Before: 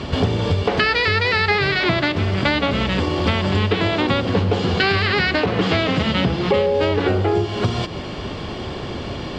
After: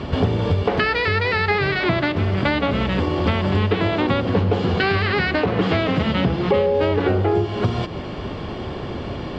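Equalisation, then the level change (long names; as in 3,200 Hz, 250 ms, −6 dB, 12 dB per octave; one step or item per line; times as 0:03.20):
high-shelf EQ 3,700 Hz −12 dB
0.0 dB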